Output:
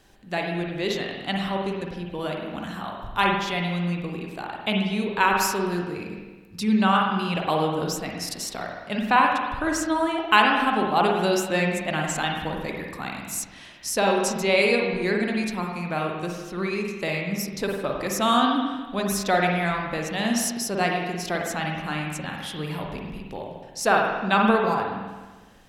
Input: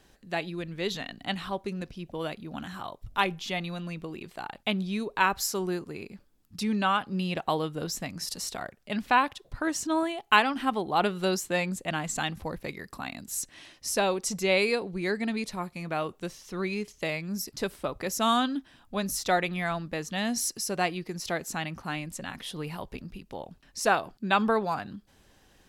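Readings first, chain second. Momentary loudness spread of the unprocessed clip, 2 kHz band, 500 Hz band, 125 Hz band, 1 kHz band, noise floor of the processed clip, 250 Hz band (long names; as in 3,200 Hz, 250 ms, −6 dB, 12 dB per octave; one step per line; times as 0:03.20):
14 LU, +5.5 dB, +5.5 dB, +6.0 dB, +5.5 dB, −45 dBFS, +6.0 dB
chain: spring reverb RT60 1.3 s, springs 46/51 ms, chirp 65 ms, DRR 0 dB
level +2.5 dB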